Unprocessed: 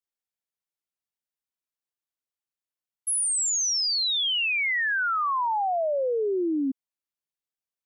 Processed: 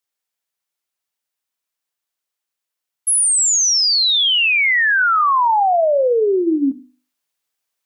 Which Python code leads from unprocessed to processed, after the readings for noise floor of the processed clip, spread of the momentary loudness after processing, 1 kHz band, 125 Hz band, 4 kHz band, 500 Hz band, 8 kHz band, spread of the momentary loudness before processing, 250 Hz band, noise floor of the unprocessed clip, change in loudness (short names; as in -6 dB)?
-83 dBFS, 5 LU, +11.0 dB, n/a, +10.0 dB, +10.0 dB, +10.0 dB, 5 LU, +9.0 dB, under -85 dBFS, +10.0 dB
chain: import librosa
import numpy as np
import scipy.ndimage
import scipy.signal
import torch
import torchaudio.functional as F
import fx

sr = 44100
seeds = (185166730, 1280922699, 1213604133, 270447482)

p1 = fx.low_shelf(x, sr, hz=350.0, db=-9.0)
p2 = fx.hum_notches(p1, sr, base_hz=50, count=7)
p3 = fx.rider(p2, sr, range_db=10, speed_s=0.5)
p4 = p2 + (p3 * librosa.db_to_amplitude(-2.5))
p5 = fx.rev_schroeder(p4, sr, rt60_s=0.34, comb_ms=25, drr_db=16.0)
y = p5 * librosa.db_to_amplitude(6.0)